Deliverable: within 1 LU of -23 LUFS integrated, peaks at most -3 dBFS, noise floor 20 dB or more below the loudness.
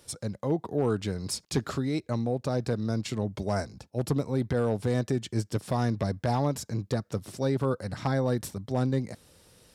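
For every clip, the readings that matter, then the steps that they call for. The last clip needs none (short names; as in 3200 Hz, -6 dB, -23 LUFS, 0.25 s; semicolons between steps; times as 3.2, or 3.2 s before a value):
clipped 0.3%; flat tops at -17.0 dBFS; loudness -30.0 LUFS; peak -17.0 dBFS; loudness target -23.0 LUFS
-> clip repair -17 dBFS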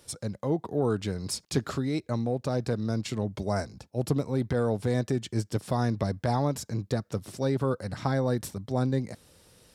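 clipped 0.0%; loudness -30.0 LUFS; peak -12.0 dBFS; loudness target -23.0 LUFS
-> gain +7 dB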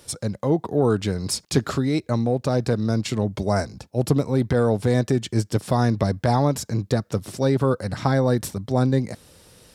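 loudness -23.0 LUFS; peak -5.0 dBFS; noise floor -59 dBFS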